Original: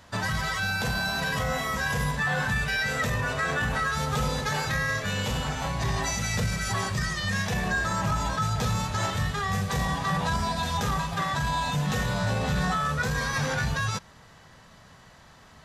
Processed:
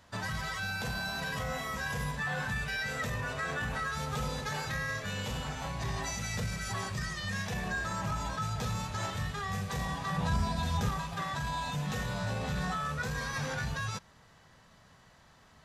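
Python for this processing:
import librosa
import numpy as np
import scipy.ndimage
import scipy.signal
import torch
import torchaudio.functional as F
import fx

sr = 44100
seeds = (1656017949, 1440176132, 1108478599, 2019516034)

y = fx.rattle_buzz(x, sr, strikes_db=-34.0, level_db=-38.0)
y = fx.low_shelf(y, sr, hz=240.0, db=9.0, at=(10.18, 10.89))
y = F.gain(torch.from_numpy(y), -7.5).numpy()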